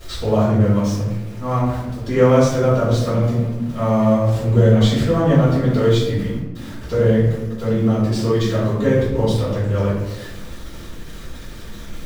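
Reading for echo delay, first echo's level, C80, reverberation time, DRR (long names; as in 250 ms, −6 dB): no echo audible, no echo audible, 3.5 dB, 1.1 s, −12.0 dB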